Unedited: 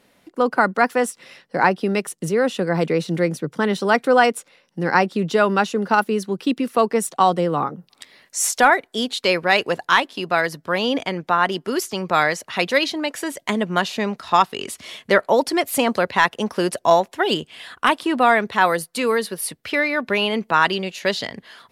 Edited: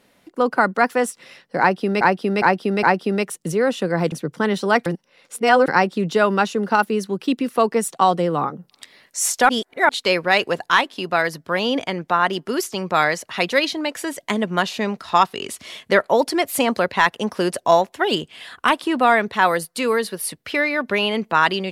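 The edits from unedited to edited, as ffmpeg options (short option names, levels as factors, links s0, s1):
-filter_complex "[0:a]asplit=9[s0][s1][s2][s3][s4][s5][s6][s7][s8];[s0]atrim=end=2.012[s9];[s1]atrim=start=1.598:end=2.012[s10];[s2]atrim=start=1.598:end=2.012[s11];[s3]atrim=start=1.598:end=2.892[s12];[s4]atrim=start=3.308:end=4.052[s13];[s5]atrim=start=4.048:end=4.872,asetpts=PTS-STARTPTS,areverse[s14];[s6]atrim=start=4.868:end=8.682[s15];[s7]atrim=start=8.678:end=9.082,asetpts=PTS-STARTPTS,areverse[s16];[s8]atrim=start=9.078[s17];[s9][s10]acrossfade=d=0.004:c1=hsin:c2=hsin[s18];[s18][s11]acrossfade=d=0.004:c1=hsin:c2=hsin[s19];[s19][s12]acrossfade=d=0.004:c1=hsin:c2=hsin[s20];[s20][s13]acrossfade=d=0.004:c1=hsin:c2=hsin[s21];[s21][s14]acrossfade=d=0.004:c1=hsin:c2=hsin[s22];[s22][s15]acrossfade=d=0.004:c1=hsin:c2=hsin[s23];[s23][s16]acrossfade=d=0.004:c1=hsin:c2=hsin[s24];[s24][s17]acrossfade=d=0.004:c1=hsin:c2=hsin"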